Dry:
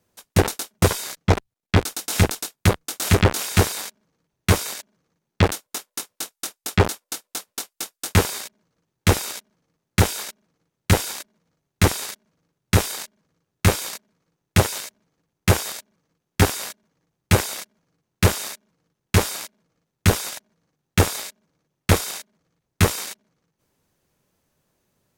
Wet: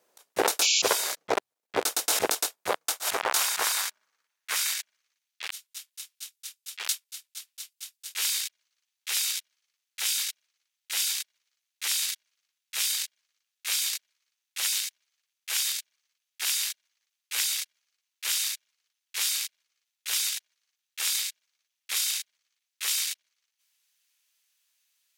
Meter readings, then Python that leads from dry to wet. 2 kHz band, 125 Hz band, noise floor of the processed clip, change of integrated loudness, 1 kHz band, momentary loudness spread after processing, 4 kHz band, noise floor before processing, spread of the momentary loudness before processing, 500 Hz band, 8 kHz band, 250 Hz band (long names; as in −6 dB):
−6.5 dB, below −40 dB, −85 dBFS, −5.0 dB, −7.5 dB, 16 LU, 0.0 dB, −82 dBFS, 14 LU, −10.5 dB, 0.0 dB, below −20 dB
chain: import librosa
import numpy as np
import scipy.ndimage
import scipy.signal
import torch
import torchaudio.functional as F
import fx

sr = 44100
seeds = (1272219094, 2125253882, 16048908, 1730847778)

y = fx.filter_sweep_highpass(x, sr, from_hz=490.0, to_hz=2800.0, start_s=2.35, end_s=5.32, q=1.2)
y = fx.spec_paint(y, sr, seeds[0], shape='noise', start_s=0.61, length_s=0.28, low_hz=2200.0, high_hz=7400.0, level_db=-25.0)
y = fx.auto_swell(y, sr, attack_ms=102.0)
y = y * librosa.db_to_amplitude(2.0)